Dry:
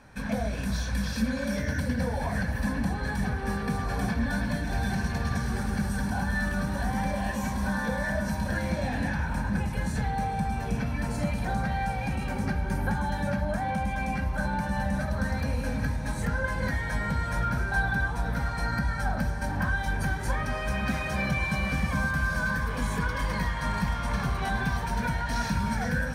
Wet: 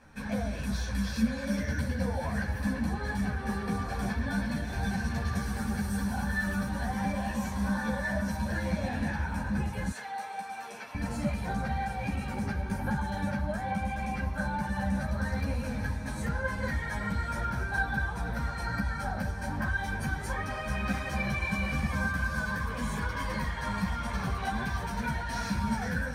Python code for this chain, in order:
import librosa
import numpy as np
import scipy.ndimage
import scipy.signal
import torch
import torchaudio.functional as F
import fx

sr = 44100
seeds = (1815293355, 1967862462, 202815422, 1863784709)

y = fx.high_shelf(x, sr, hz=11000.0, db=8.0, at=(5.33, 6.68))
y = fx.highpass(y, sr, hz=660.0, slope=12, at=(9.91, 10.95))
y = fx.ensemble(y, sr)